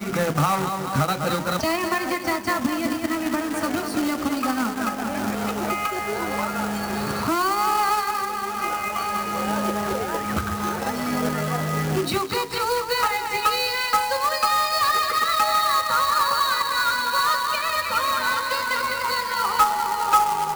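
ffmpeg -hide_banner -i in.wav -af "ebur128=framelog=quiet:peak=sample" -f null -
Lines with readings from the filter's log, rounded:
Integrated loudness:
  I:         -22.7 LUFS
  Threshold: -32.7 LUFS
Loudness range:
  LRA:         5.0 LU
  Threshold: -42.8 LUFS
  LRA low:   -25.1 LUFS
  LRA high:  -20.1 LUFS
Sample peak:
  Peak:       -7.4 dBFS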